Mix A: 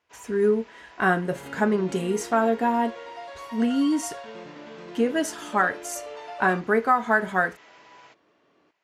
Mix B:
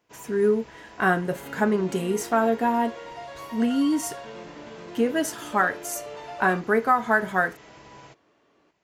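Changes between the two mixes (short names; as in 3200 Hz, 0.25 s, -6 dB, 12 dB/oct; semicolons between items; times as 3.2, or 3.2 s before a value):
first sound: remove band-pass 2000 Hz, Q 0.51; master: remove LPF 10000 Hz 12 dB/oct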